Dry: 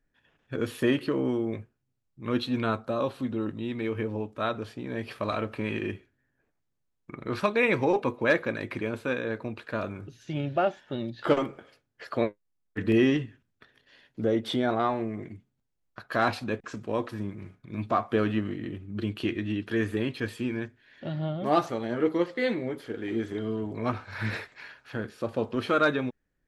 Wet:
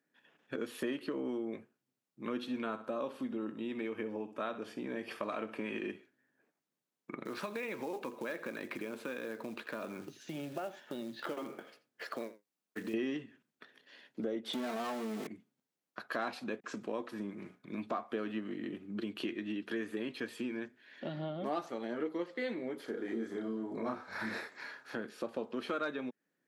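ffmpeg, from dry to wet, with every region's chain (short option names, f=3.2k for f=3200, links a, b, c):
-filter_complex "[0:a]asettb=1/sr,asplit=3[a][b][c];[a]atrim=end=2.304[d];[b]atrim=start=2.3:end=5.8,asetpts=PTS-STARTPTS,afade=t=in:d=0.004:c=qsin,afade=t=out:st=3.496:d=0.004:c=qsin,bandreject=f=4k:w=6.7,aecho=1:1:64|128|192:0.2|0.0619|0.0192,atrim=end_sample=154350[e];[c]atrim=start=5.796[f];[d][e]acrossfade=d=0.004:c1=hsin:c2=qsin[g];[g][f]acrossfade=d=0.004:c1=qsin:c2=hsin,asettb=1/sr,asplit=3[h][i][j];[h]atrim=end=7.254[k];[i]atrim=start=7.25:end=12.94,asetpts=PTS-STARTPTS,afade=t=in:d=0.004:c=qsin,afade=t=out:st=5.686:d=0.004:c=qsin,acompressor=threshold=-36dB:ratio=2.5:attack=3.2:release=140:knee=1:detection=peak,acrusher=bits=5:mode=log:mix=0:aa=0.000001,aecho=1:1:83:0.126,atrim=end_sample=250929[l];[j]atrim=start=12.936[m];[k][l]acrossfade=d=0.004:c1=hsin:c2=qsin[n];[n][m]acrossfade=d=0.004:c1=qsin:c2=hsin,asettb=1/sr,asplit=3[o][p][q];[o]atrim=end=14.534[r];[p]atrim=start=14.53:end=15.27,asetpts=PTS-STARTPTS,afade=t=in:d=0.004:c=qsin,afade=t=out:st=0.736:d=0.004:c=qsin,aeval=exprs='val(0)+0.5*0.0335*sgn(val(0))':c=same,aeval=exprs='(tanh(22.4*val(0)+0.7)-tanh(0.7))/22.4':c=same,aecho=1:1:4.5:0.55,atrim=end_sample=32634[s];[q]atrim=start=15.266[t];[r][s]acrossfade=d=0.004:c1=hsin:c2=qsin[u];[u][t]acrossfade=d=0.004:c1=qsin:c2=hsin,asettb=1/sr,asplit=3[v][w][x];[v]atrim=end=22.854[y];[w]atrim=start=22.85:end=24.95,asetpts=PTS-STARTPTS,afade=t=in:d=0.004:c=qsin,afade=t=out:st=2.096:d=0.004:c=qsin,equalizer=f=2.8k:t=o:w=0.72:g=-9.5,asplit=2[z][aa];[aa]adelay=31,volume=-2dB[ab];[z][ab]amix=inputs=2:normalize=0,atrim=end_sample=92610[ac];[x]atrim=start=24.946[ad];[y][ac]acrossfade=d=0.004:c1=hsin:c2=qsin[ae];[ae][ad]acrossfade=d=0.004:c1=qsin:c2=hsin,highpass=f=190:w=0.5412,highpass=f=190:w=1.3066,acompressor=threshold=-37dB:ratio=3"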